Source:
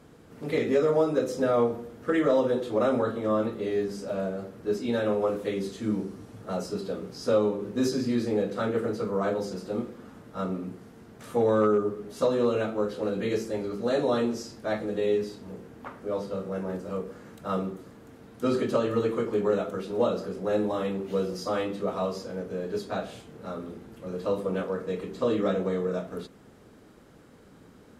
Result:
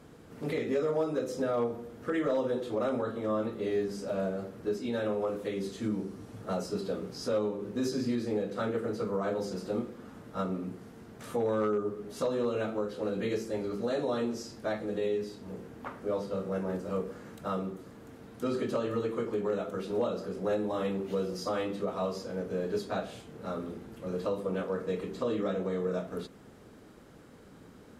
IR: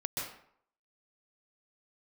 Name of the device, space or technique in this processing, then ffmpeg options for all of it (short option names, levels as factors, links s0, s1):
clipper into limiter: -af "asoftclip=type=hard:threshold=0.168,alimiter=limit=0.0794:level=0:latency=1:release=463"